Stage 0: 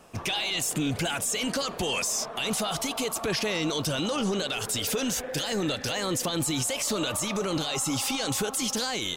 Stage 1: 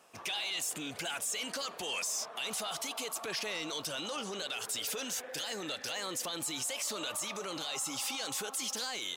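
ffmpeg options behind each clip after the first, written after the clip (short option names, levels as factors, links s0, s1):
-af "highpass=f=740:p=1,asoftclip=type=tanh:threshold=0.1,volume=0.531"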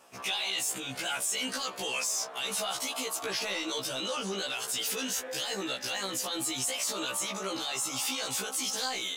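-af "afftfilt=real='re*1.73*eq(mod(b,3),0)':imag='im*1.73*eq(mod(b,3),0)':win_size=2048:overlap=0.75,volume=2.11"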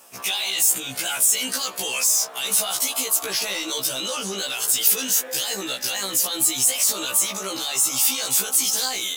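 -af "aemphasis=mode=production:type=50fm,volume=1.58"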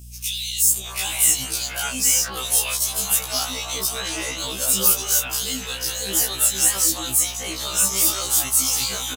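-filter_complex "[0:a]acrossover=split=450|3100[s0][s1][s2];[s0]adelay=510[s3];[s1]adelay=720[s4];[s3][s4][s2]amix=inputs=3:normalize=0,aeval=exprs='val(0)+0.01*(sin(2*PI*60*n/s)+sin(2*PI*2*60*n/s)/2+sin(2*PI*3*60*n/s)/3+sin(2*PI*4*60*n/s)/4+sin(2*PI*5*60*n/s)/5)':c=same,afftfilt=real='re*1.73*eq(mod(b,3),0)':imag='im*1.73*eq(mod(b,3),0)':win_size=2048:overlap=0.75"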